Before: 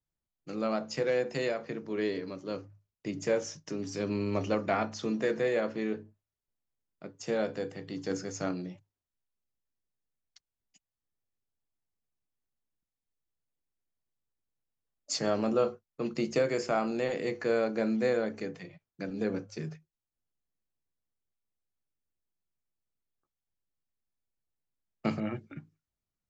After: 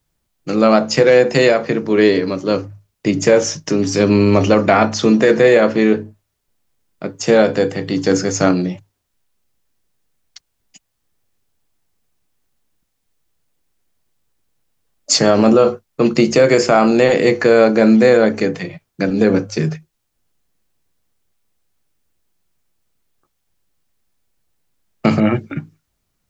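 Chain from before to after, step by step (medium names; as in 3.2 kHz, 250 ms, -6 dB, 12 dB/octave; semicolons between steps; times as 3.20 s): loudness maximiser +20.5 dB; trim -1 dB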